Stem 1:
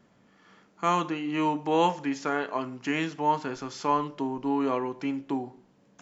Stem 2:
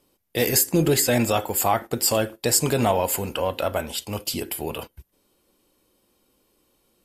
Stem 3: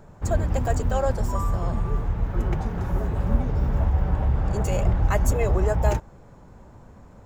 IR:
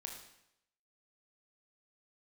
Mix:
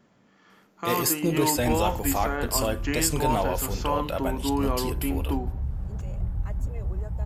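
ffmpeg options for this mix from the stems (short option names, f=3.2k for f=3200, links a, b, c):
-filter_complex "[0:a]alimiter=limit=-17.5dB:level=0:latency=1,volume=0.5dB[a];[1:a]adelay=500,volume=-5.5dB[b];[2:a]bass=f=250:g=12,treble=f=4k:g=-3,adelay=1350,volume=-19.5dB[c];[a][b][c]amix=inputs=3:normalize=0"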